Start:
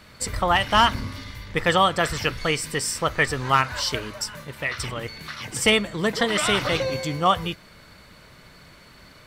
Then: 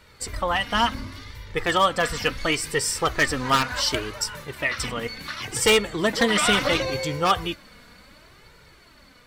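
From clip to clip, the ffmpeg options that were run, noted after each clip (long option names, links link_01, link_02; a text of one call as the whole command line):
ffmpeg -i in.wav -af "dynaudnorm=framelen=630:gausssize=7:maxgain=9dB,aeval=exprs='0.422*(abs(mod(val(0)/0.422+3,4)-2)-1)':channel_layout=same,flanger=delay=2.1:depth=2.1:regen=24:speed=0.7:shape=sinusoidal" out.wav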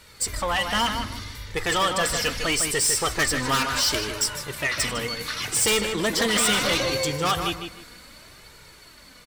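ffmpeg -i in.wav -filter_complex "[0:a]equalizer=frequency=10000:width_type=o:width=2.2:gain=11,asoftclip=type=tanh:threshold=-18dB,asplit=2[link_01][link_02];[link_02]adelay=154,lowpass=frequency=3300:poles=1,volume=-6dB,asplit=2[link_03][link_04];[link_04]adelay=154,lowpass=frequency=3300:poles=1,volume=0.26,asplit=2[link_05][link_06];[link_06]adelay=154,lowpass=frequency=3300:poles=1,volume=0.26[link_07];[link_01][link_03][link_05][link_07]amix=inputs=4:normalize=0" out.wav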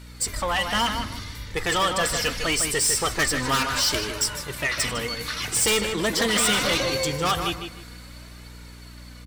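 ffmpeg -i in.wav -af "aeval=exprs='val(0)+0.00794*(sin(2*PI*60*n/s)+sin(2*PI*2*60*n/s)/2+sin(2*PI*3*60*n/s)/3+sin(2*PI*4*60*n/s)/4+sin(2*PI*5*60*n/s)/5)':channel_layout=same" out.wav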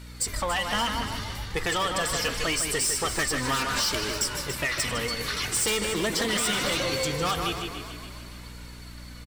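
ffmpeg -i in.wav -filter_complex "[0:a]acompressor=threshold=-24dB:ratio=6,asplit=6[link_01][link_02][link_03][link_04][link_05][link_06];[link_02]adelay=285,afreqshift=-48,volume=-11dB[link_07];[link_03]adelay=570,afreqshift=-96,volume=-17.7dB[link_08];[link_04]adelay=855,afreqshift=-144,volume=-24.5dB[link_09];[link_05]adelay=1140,afreqshift=-192,volume=-31.2dB[link_10];[link_06]adelay=1425,afreqshift=-240,volume=-38dB[link_11];[link_01][link_07][link_08][link_09][link_10][link_11]amix=inputs=6:normalize=0" out.wav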